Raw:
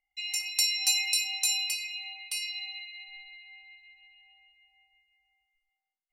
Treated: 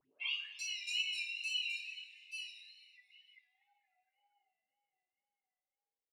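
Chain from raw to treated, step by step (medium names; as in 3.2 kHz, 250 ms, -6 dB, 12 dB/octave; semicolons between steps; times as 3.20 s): tape start-up on the opening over 0.61 s; spectral noise reduction 20 dB; in parallel at -10.5 dB: overload inside the chain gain 22 dB; on the sum: comb 7.3 ms, depth 50%; wow and flutter 93 cents; upward compressor, threshold -43 dBFS; two-slope reverb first 0.41 s, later 2.2 s, from -19 dB, DRR -6 dB; auto-wah 380–2800 Hz, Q 9.1, up, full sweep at -38 dBFS; on a send: frequency-shifting echo 235 ms, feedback 58%, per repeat -150 Hz, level -23 dB; on the sum: trim -7.5 dB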